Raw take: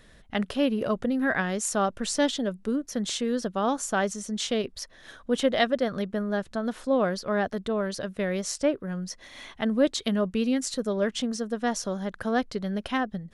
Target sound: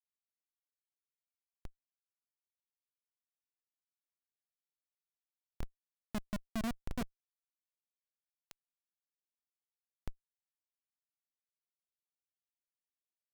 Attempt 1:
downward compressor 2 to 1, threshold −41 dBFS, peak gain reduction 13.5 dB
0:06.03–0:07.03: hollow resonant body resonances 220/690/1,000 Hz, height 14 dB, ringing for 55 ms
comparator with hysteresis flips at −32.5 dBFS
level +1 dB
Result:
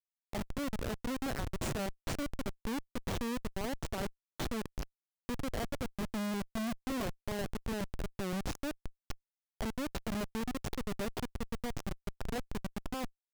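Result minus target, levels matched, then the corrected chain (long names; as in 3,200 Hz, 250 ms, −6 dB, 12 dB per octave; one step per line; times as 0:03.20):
comparator with hysteresis: distortion −9 dB
downward compressor 2 to 1, threshold −41 dBFS, peak gain reduction 13.5 dB
0:06.03–0:07.03: hollow resonant body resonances 220/690/1,000 Hz, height 14 dB, ringing for 55 ms
comparator with hysteresis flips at −23 dBFS
level +1 dB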